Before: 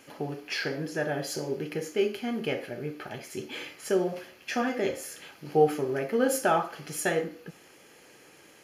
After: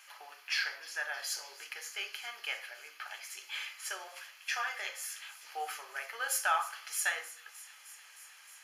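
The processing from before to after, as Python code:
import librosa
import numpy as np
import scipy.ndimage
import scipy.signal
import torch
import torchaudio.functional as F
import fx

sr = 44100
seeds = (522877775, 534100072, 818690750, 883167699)

y = scipy.signal.sosfilt(scipy.signal.butter(4, 1000.0, 'highpass', fs=sr, output='sos'), x)
y = fx.echo_wet_highpass(y, sr, ms=309, feedback_pct=80, hz=3500.0, wet_db=-16)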